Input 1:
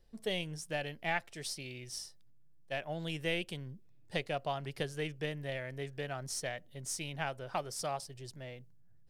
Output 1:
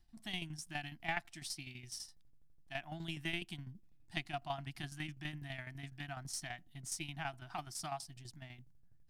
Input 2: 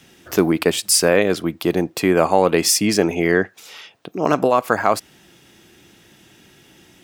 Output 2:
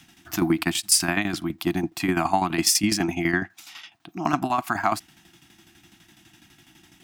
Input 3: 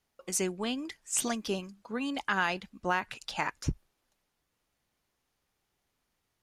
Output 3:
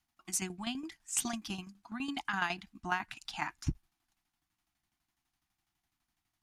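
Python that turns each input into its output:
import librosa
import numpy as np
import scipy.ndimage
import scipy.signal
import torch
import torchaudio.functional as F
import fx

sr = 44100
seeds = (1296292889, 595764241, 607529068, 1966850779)

y = scipy.signal.sosfilt(scipy.signal.cheby1(3, 1.0, [340.0, 690.0], 'bandstop', fs=sr, output='sos'), x)
y = fx.tremolo_shape(y, sr, shape='saw_down', hz=12.0, depth_pct=70)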